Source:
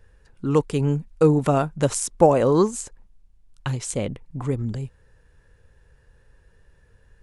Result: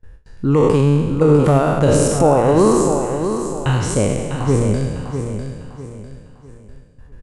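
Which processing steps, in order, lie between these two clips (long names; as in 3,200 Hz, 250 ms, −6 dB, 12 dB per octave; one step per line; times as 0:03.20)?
peak hold with a decay on every bin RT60 1.42 s
noise gate with hold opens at −42 dBFS
spectral tilt −1.5 dB per octave
brickwall limiter −8.5 dBFS, peak gain reduction 8.5 dB
repeating echo 650 ms, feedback 34%, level −8 dB
level +4 dB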